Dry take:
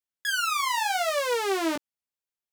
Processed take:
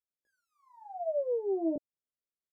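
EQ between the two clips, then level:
elliptic low-pass filter 640 Hz, stop band 50 dB
−2.0 dB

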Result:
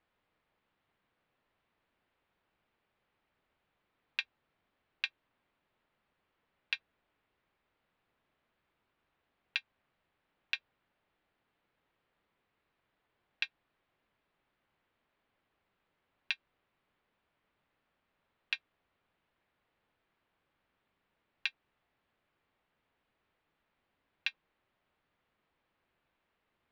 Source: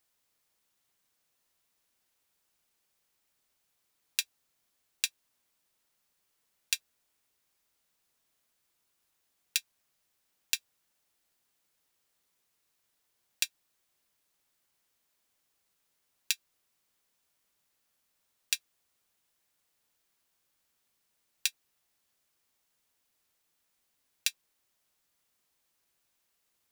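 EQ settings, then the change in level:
low-pass filter 3,700 Hz 12 dB per octave
high-frequency loss of the air 360 metres
+7.0 dB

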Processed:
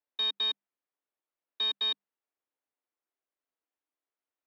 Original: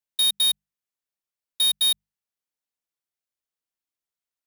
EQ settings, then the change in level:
Chebyshev high-pass filter 270 Hz, order 4
high-frequency loss of the air 140 metres
head-to-tape spacing loss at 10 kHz 28 dB
+6.5 dB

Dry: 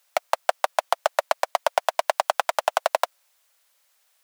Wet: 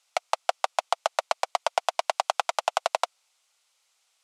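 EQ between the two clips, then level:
loudspeaker in its box 350–9,800 Hz, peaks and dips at 580 Hz −7 dB, 1,000 Hz −3 dB, 1,700 Hz −9 dB, 9,400 Hz −4 dB
0.0 dB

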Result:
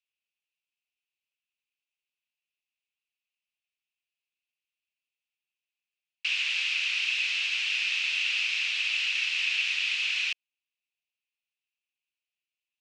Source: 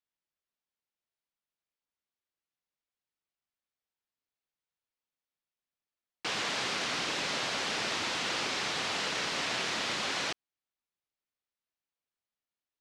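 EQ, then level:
high-pass with resonance 2,600 Hz, resonance Q 7.6
low-pass filter 8,100 Hz 12 dB per octave
−3.5 dB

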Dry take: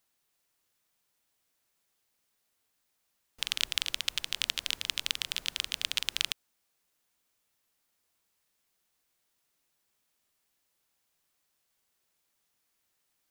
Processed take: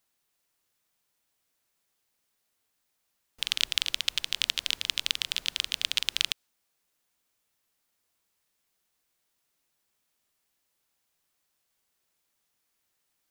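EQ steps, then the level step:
dynamic equaliser 3,700 Hz, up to +4 dB, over −45 dBFS, Q 0.81
0.0 dB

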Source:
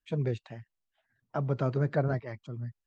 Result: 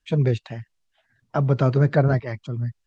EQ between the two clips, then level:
high-frequency loss of the air 59 metres
low-shelf EQ 170 Hz +4.5 dB
high-shelf EQ 3,100 Hz +8.5 dB
+8.0 dB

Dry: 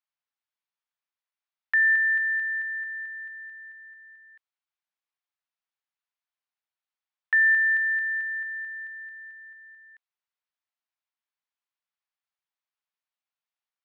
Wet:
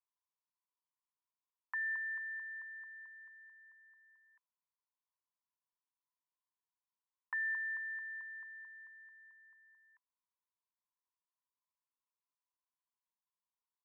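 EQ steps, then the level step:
resonant band-pass 1,000 Hz, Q 11
+5.5 dB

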